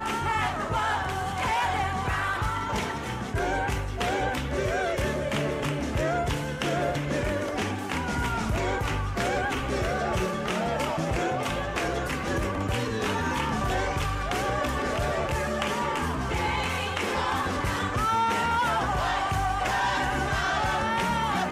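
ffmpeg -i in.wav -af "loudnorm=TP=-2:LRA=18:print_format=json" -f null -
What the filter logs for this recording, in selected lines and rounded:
"input_i" : "-27.2",
"input_tp" : "-16.4",
"input_lra" : "2.4",
"input_thresh" : "-37.2",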